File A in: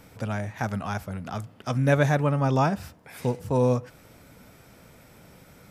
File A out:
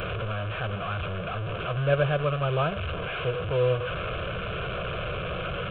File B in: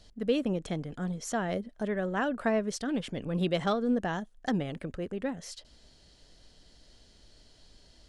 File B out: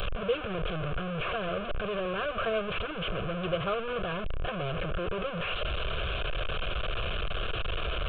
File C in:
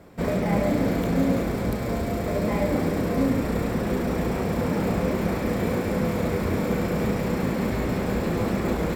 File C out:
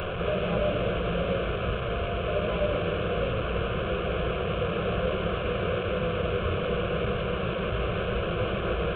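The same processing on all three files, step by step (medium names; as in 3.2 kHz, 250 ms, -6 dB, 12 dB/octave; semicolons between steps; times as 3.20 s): one-bit delta coder 16 kbps, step -22 dBFS; static phaser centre 1.3 kHz, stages 8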